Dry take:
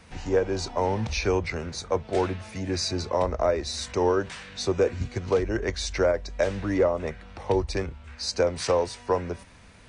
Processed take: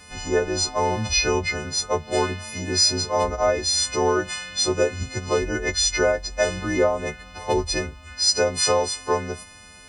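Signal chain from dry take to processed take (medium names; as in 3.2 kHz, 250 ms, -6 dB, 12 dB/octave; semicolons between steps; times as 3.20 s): partials quantised in pitch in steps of 3 st; trim +2 dB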